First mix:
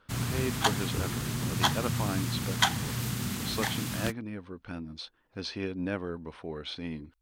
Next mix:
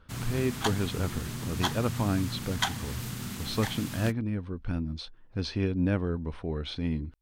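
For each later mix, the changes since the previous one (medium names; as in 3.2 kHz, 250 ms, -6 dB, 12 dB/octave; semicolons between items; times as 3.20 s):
speech: remove high-pass 420 Hz 6 dB/octave; background -4.0 dB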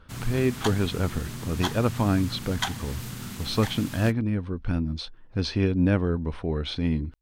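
speech +5.0 dB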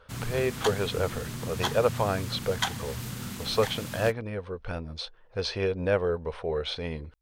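speech: add resonant low shelf 370 Hz -8.5 dB, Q 3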